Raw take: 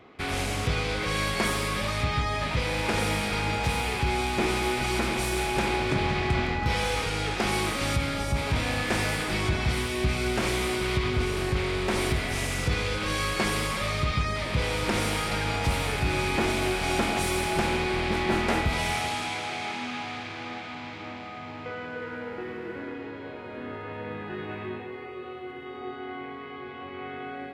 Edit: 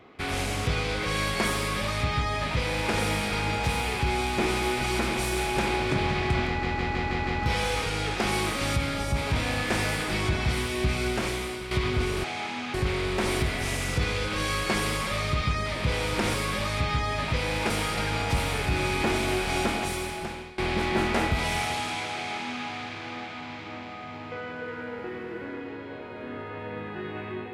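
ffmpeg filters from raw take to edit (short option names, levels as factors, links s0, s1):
-filter_complex "[0:a]asplit=12[s0][s1][s2][s3][s4][s5][s6][s7][s8][s9][s10][s11];[s0]atrim=end=6.632[s12];[s1]atrim=start=6.468:end=6.632[s13];[s2]atrim=start=6.468:end=6.632[s14];[s3]atrim=start=6.468:end=6.632[s15];[s4]atrim=start=6.468:end=6.632[s16];[s5]atrim=start=6.468:end=10.91,asetpts=PTS-STARTPTS,afade=t=out:st=3.772:d=0.67:silence=0.316228[s17];[s6]atrim=start=10.91:end=11.442,asetpts=PTS-STARTPTS,afade=t=in:d=0.004:c=hsin:silence=0.316228[s18];[s7]atrim=start=19.488:end=19.992[s19];[s8]atrim=start=11.438:end=15.042[s20];[s9]atrim=start=1.568:end=2.932[s21];[s10]atrim=start=15.038:end=17.92,asetpts=PTS-STARTPTS,afade=t=out:st=1.862:d=1.02:silence=0.0794328[s22];[s11]atrim=start=17.92,asetpts=PTS-STARTPTS,afade=t=in:d=0.004:c=hsin:silence=0.0794328[s23];[s12][s13]acrossfade=d=0.004:c1=hsin:c2=hsin[s24];[s24][s14]acrossfade=d=0.004:c1=hsin:c2=hsin[s25];[s25][s15]acrossfade=d=0.004:c1=hsin:c2=hsin[s26];[s26][s16]acrossfade=d=0.004:c1=hsin:c2=hsin[s27];[s17][s18]concat=n=2:v=0:a=1[s28];[s27][s28]acrossfade=d=0.004:c1=hsin:c2=hsin[s29];[s29][s19]acrossfade=d=0.004:c1=hsin:c2=hsin[s30];[s30][s20]acrossfade=d=0.004:c1=hsin:c2=hsin[s31];[s31][s21]acrossfade=d=0.004:c1=hsin:c2=hsin[s32];[s22][s23]concat=n=2:v=0:a=1[s33];[s32][s33]acrossfade=d=0.004:c1=hsin:c2=hsin"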